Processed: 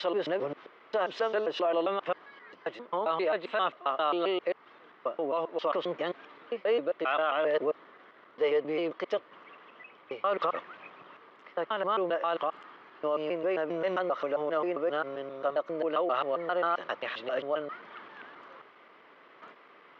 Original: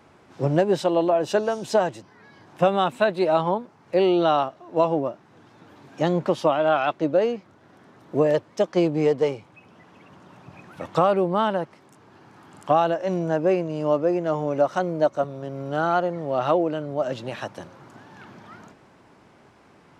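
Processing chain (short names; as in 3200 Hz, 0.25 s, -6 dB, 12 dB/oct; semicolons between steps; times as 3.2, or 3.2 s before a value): slices in reverse order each 0.133 s, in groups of 7; limiter -17.5 dBFS, peak gain reduction 11 dB; speaker cabinet 430–3900 Hz, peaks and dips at 460 Hz +4 dB, 820 Hz -5 dB, 1200 Hz +8 dB, 2000 Hz +7 dB, 3100 Hz +5 dB; gain -2 dB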